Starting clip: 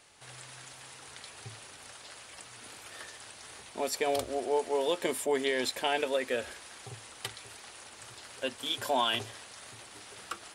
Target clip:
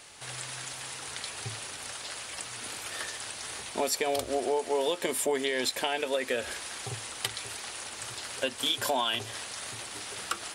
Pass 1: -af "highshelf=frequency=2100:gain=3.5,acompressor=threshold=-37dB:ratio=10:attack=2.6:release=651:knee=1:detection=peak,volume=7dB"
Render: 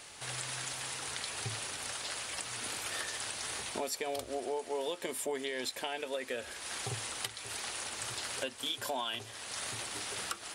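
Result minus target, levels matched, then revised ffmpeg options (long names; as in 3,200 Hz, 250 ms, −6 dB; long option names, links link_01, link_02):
downward compressor: peak gain reduction +7.5 dB
-af "highshelf=frequency=2100:gain=3.5,acompressor=threshold=-28.5dB:ratio=10:attack=2.6:release=651:knee=1:detection=peak,volume=7dB"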